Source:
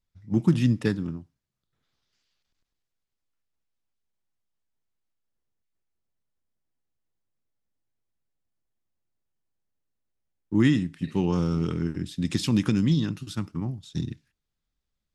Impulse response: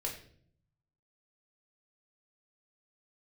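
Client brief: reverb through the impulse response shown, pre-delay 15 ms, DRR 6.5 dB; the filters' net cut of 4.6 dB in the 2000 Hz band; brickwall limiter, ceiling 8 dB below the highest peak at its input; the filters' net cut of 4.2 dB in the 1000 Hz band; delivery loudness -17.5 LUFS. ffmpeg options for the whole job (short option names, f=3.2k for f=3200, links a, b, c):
-filter_complex "[0:a]equalizer=f=1k:t=o:g=-4,equalizer=f=2k:t=o:g=-4.5,alimiter=limit=-16.5dB:level=0:latency=1,asplit=2[a][b];[1:a]atrim=start_sample=2205,adelay=15[c];[b][c]afir=irnorm=-1:irlink=0,volume=-8dB[d];[a][d]amix=inputs=2:normalize=0,volume=10dB"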